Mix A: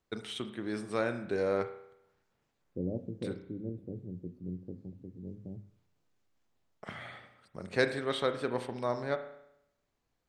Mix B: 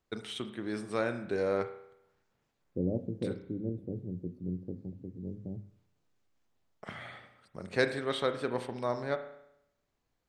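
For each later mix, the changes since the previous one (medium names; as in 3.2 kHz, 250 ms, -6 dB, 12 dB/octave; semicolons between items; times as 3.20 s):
second voice +3.5 dB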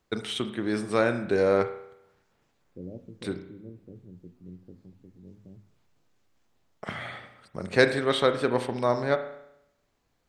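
first voice +8.0 dB; second voice -9.0 dB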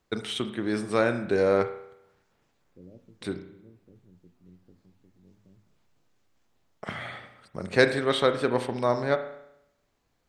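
second voice -9.0 dB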